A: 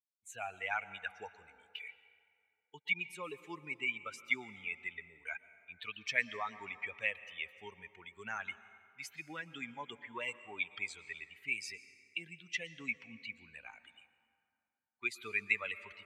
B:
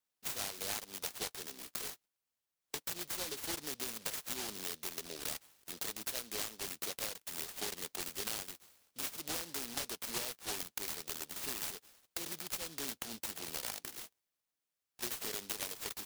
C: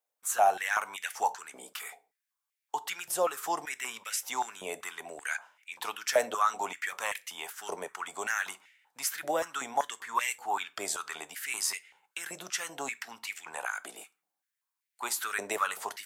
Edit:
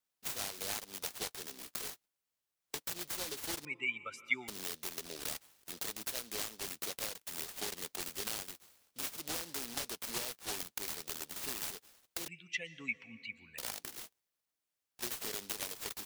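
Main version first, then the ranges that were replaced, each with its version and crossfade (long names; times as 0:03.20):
B
0:03.65–0:04.48: punch in from A
0:12.28–0:13.58: punch in from A
not used: C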